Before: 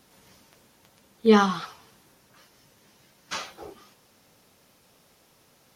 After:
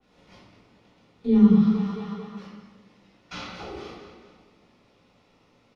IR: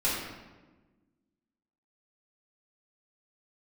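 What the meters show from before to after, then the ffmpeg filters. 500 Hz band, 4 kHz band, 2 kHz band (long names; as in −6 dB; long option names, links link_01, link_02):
−7.0 dB, −7.5 dB, −9.5 dB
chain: -filter_complex "[0:a]lowpass=3800,agate=range=-10dB:threshold=-56dB:ratio=16:detection=peak,aecho=1:1:223|446|669|892:0.141|0.065|0.0299|0.0137,acrossover=split=230[link_01][link_02];[link_02]acompressor=threshold=-44dB:ratio=12[link_03];[link_01][link_03]amix=inputs=2:normalize=0,bandreject=frequency=1600:width=8,asplit=2[link_04][link_05];[link_05]adelay=17,volume=-10.5dB[link_06];[link_04][link_06]amix=inputs=2:normalize=0[link_07];[1:a]atrim=start_sample=2205[link_08];[link_07][link_08]afir=irnorm=-1:irlink=0,adynamicequalizer=threshold=0.00562:dfrequency=2900:dqfactor=0.7:tfrequency=2900:tqfactor=0.7:attack=5:release=100:ratio=0.375:range=2:mode=boostabove:tftype=highshelf"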